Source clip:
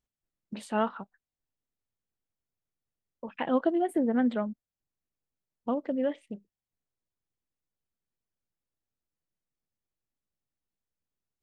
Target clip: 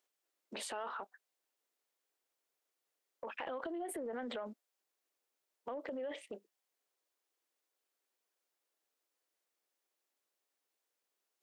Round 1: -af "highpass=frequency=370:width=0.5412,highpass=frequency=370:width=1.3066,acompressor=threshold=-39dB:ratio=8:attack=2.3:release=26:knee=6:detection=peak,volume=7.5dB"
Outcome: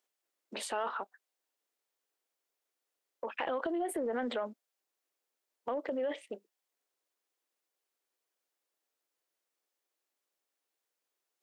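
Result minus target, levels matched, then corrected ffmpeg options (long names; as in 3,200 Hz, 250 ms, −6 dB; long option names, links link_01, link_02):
downward compressor: peak gain reduction −7.5 dB
-af "highpass=frequency=370:width=0.5412,highpass=frequency=370:width=1.3066,acompressor=threshold=-47.5dB:ratio=8:attack=2.3:release=26:knee=6:detection=peak,volume=7.5dB"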